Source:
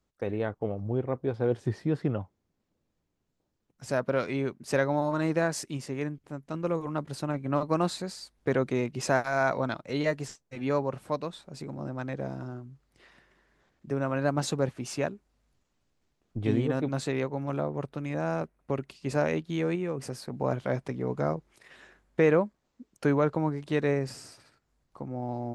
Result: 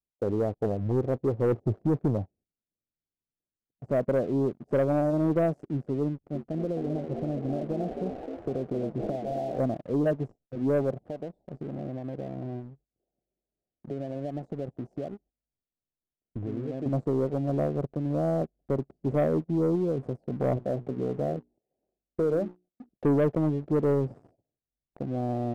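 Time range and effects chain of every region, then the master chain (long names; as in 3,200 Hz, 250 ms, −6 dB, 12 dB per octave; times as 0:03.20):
0:06.08–0:09.59: downward compressor 10 to 1, threshold −30 dBFS + echo with shifted repeats 263 ms, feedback 55%, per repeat +82 Hz, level −6.5 dB + linearly interpolated sample-rate reduction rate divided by 8×
0:10.93–0:16.86: low-shelf EQ 190 Hz −2.5 dB + downward compressor 5 to 1, threshold −35 dBFS
0:20.57–0:22.89: low-shelf EQ 110 Hz −7 dB + mains-hum notches 60/120/180/240/300/360/420 Hz + downward compressor 2 to 1, threshold −29 dBFS
whole clip: elliptic low-pass filter 730 Hz, stop band 40 dB; noise gate −60 dBFS, range −14 dB; leveller curve on the samples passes 2; level −2 dB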